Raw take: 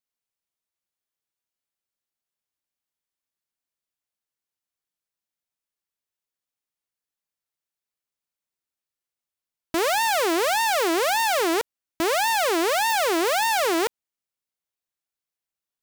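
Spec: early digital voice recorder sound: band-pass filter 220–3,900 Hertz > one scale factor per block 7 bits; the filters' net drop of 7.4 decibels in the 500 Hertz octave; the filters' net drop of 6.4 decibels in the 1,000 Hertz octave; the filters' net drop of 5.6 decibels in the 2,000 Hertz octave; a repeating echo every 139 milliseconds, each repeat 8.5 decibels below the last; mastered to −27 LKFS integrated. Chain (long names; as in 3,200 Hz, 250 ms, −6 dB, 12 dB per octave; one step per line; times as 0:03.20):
band-pass filter 220–3,900 Hz
parametric band 500 Hz −8.5 dB
parametric band 1,000 Hz −4 dB
parametric band 2,000 Hz −5 dB
repeating echo 139 ms, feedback 38%, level −8.5 dB
one scale factor per block 7 bits
level +1 dB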